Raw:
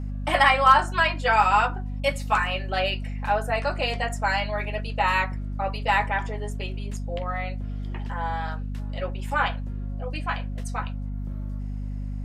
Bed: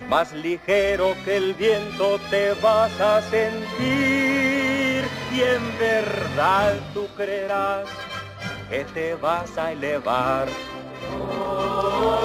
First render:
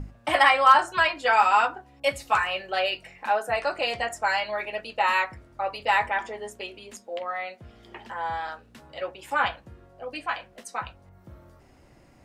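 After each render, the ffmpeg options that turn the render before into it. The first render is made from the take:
-af "bandreject=f=50:t=h:w=6,bandreject=f=100:t=h:w=6,bandreject=f=150:t=h:w=6,bandreject=f=200:t=h:w=6,bandreject=f=250:t=h:w=6"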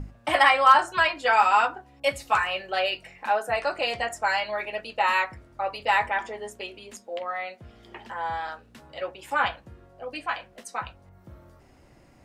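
-af anull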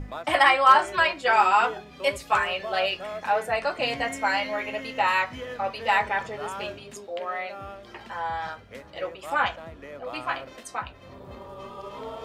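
-filter_complex "[1:a]volume=0.141[s0];[0:a][s0]amix=inputs=2:normalize=0"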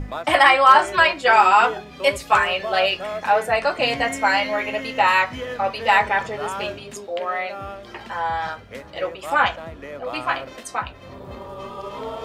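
-af "volume=2,alimiter=limit=0.708:level=0:latency=1"

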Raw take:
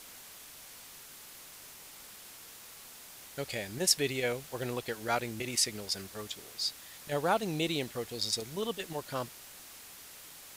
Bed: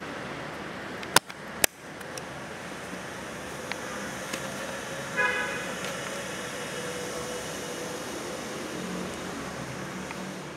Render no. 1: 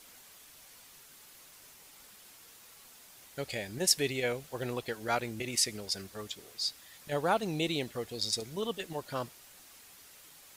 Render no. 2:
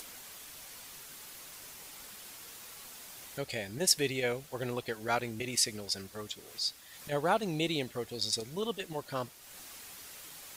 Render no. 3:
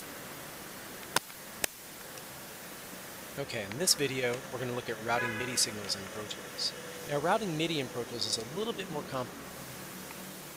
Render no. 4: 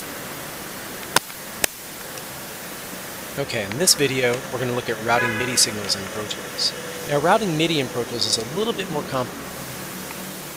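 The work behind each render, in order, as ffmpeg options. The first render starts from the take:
-af "afftdn=nr=6:nf=-51"
-af "acompressor=mode=upward:threshold=0.01:ratio=2.5"
-filter_complex "[1:a]volume=0.335[s0];[0:a][s0]amix=inputs=2:normalize=0"
-af "volume=3.76,alimiter=limit=0.794:level=0:latency=1"

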